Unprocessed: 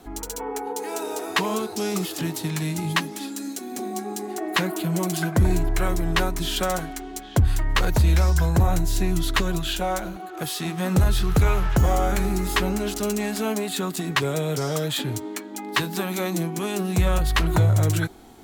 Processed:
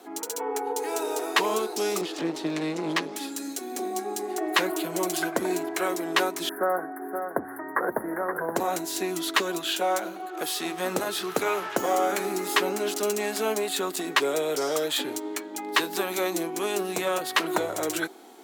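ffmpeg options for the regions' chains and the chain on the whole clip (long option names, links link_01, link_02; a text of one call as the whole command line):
ffmpeg -i in.wav -filter_complex "[0:a]asettb=1/sr,asplit=3[link_01][link_02][link_03];[link_01]atrim=end=2.014[link_04];[link_02]atrim=start=2.01:end=3.16,asetpts=PTS-STARTPTS,afade=type=in:duration=0.004:curve=qsin,afade=type=out:start_time=1.146:duration=0.004:curve=qsin,lowpass=5000,equalizer=frequency=140:width=1.7:gain=14.5,aeval=exprs='clip(val(0),-1,0.0266)':channel_layout=same[link_05];[link_03]atrim=start=3.156[link_06];[link_04][link_05]acrossfade=duration=0.004:curve1=hsin:curve2=qsin[link_07];[link_07][link_06]acrossfade=duration=0.004:curve1=qsin:curve2=hsin,asettb=1/sr,asplit=3[link_08][link_09][link_10];[link_08]atrim=end=6.494[link_11];[link_09]atrim=start=6.49:end=8.56,asetpts=PTS-STARTPTS,afade=type=in:duration=0.004:curve=qsin,afade=type=out:start_time=2.066:duration=0.004:curve=qsin,asuperstop=centerf=4600:order=20:qfactor=0.57,highshelf=frequency=6600:gain=-8.5,aecho=1:1:522:0.398,atrim=end_sample=91287[link_12];[link_10]atrim=start=8.556[link_13];[link_11][link_12]acrossfade=duration=0.004:curve1=hsin:curve2=qsin[link_14];[link_14][link_13]acrossfade=duration=0.004:curve1=qsin:curve2=hsin,highpass=frequency=310:width=0.5412,highpass=frequency=310:width=1.3066,lowshelf=frequency=420:gain=3" out.wav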